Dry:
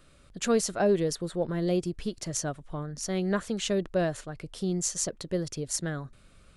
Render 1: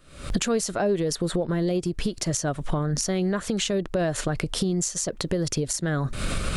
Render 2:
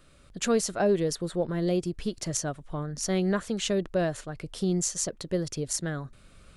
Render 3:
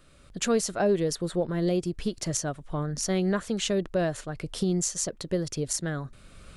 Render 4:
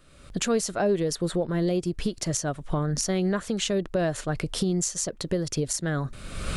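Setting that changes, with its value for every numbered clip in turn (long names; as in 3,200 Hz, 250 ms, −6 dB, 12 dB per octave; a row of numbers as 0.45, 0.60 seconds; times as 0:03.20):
camcorder AGC, rising by: 88, 5, 12, 36 dB per second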